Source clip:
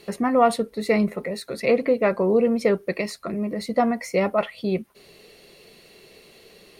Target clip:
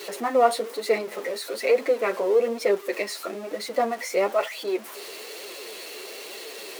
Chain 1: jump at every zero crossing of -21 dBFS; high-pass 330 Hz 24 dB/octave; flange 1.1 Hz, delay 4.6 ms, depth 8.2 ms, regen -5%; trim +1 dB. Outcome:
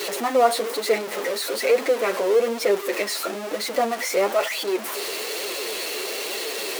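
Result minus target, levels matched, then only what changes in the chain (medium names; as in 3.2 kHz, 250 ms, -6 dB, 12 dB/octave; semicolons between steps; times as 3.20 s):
jump at every zero crossing: distortion +9 dB
change: jump at every zero crossing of -31.5 dBFS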